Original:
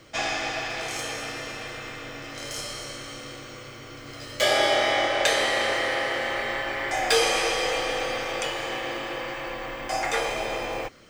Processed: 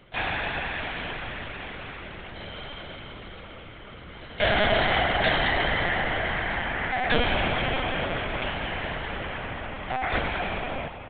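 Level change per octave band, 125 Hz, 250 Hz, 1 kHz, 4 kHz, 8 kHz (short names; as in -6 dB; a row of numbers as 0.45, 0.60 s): +10.0 dB, +3.0 dB, -0.5 dB, -3.0 dB, under -40 dB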